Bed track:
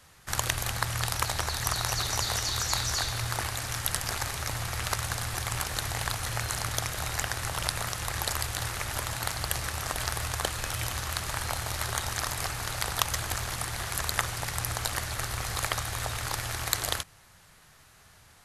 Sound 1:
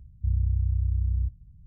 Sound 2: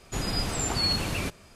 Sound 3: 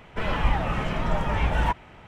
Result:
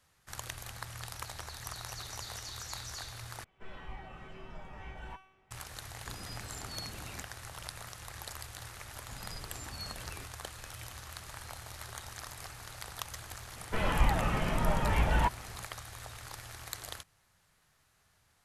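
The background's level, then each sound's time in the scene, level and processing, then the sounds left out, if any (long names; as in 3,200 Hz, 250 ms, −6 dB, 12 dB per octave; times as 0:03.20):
bed track −13.5 dB
0:03.44: overwrite with 3 −4.5 dB + tuned comb filter 380 Hz, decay 0.67 s, mix 90%
0:05.93: mix in 2 −18 dB
0:08.96: mix in 2 −14.5 dB + flanger whose copies keep moving one way falling 1.5 Hz
0:13.56: mix in 3 −4 dB
not used: 1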